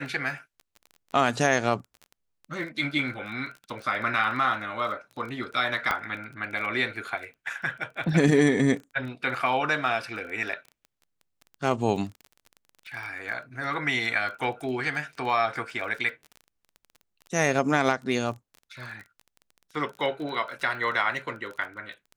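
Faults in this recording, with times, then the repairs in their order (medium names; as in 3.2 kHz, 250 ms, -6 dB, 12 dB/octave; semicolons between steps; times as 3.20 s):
crackle 21 per s -35 dBFS
5.91 s: pop -12 dBFS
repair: de-click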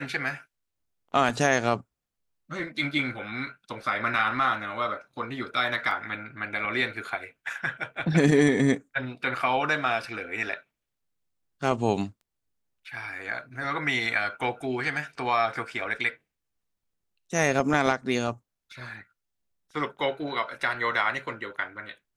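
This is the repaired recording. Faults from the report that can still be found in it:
5.91 s: pop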